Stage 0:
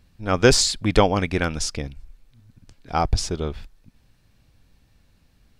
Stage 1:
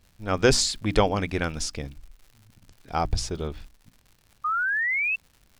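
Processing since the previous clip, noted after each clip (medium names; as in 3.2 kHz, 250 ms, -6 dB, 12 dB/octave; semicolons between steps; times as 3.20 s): hum notches 60/120/180/240/300 Hz; painted sound rise, 4.44–5.16 s, 1.2–2.7 kHz -21 dBFS; crackle 160 per s -39 dBFS; trim -4 dB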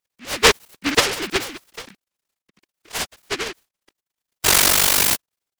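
formants replaced by sine waves; peaking EQ 360 Hz +12 dB 1.6 oct; delay time shaken by noise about 2 kHz, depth 0.43 ms; trim +2 dB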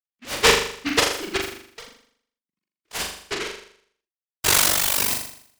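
reverb removal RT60 1.8 s; gate -44 dBFS, range -21 dB; on a send: flutter echo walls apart 7 m, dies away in 0.61 s; on the sum: trim -3.5 dB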